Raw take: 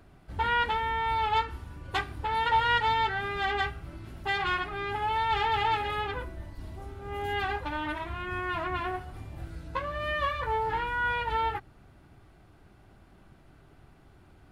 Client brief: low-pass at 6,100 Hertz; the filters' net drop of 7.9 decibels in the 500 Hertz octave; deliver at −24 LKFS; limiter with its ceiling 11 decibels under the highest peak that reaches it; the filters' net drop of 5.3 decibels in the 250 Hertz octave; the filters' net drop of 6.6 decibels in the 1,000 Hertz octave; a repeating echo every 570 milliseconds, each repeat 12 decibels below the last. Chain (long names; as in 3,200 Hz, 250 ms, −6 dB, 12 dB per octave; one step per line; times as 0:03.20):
low-pass filter 6,100 Hz
parametric band 250 Hz −4 dB
parametric band 500 Hz −7.5 dB
parametric band 1,000 Hz −5.5 dB
brickwall limiter −27 dBFS
repeating echo 570 ms, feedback 25%, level −12 dB
level +12.5 dB